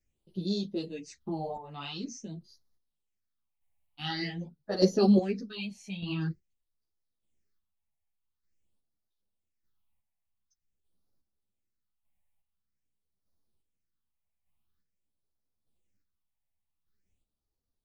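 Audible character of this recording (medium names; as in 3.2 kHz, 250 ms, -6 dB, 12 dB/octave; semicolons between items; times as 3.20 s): phasing stages 6, 0.47 Hz, lowest notch 360–2500 Hz; chopped level 0.83 Hz, depth 60%, duty 30%; a shimmering, thickened sound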